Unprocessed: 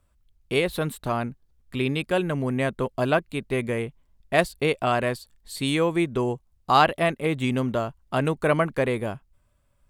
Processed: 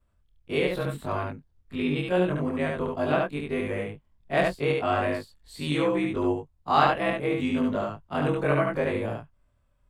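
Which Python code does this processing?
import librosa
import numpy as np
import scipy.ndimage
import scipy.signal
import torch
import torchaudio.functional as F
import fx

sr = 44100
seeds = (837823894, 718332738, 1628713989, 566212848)

p1 = fx.frame_reverse(x, sr, frame_ms=55.0)
p2 = fx.high_shelf(p1, sr, hz=5400.0, db=-11.5)
y = p2 + fx.echo_single(p2, sr, ms=72, db=-3.0, dry=0)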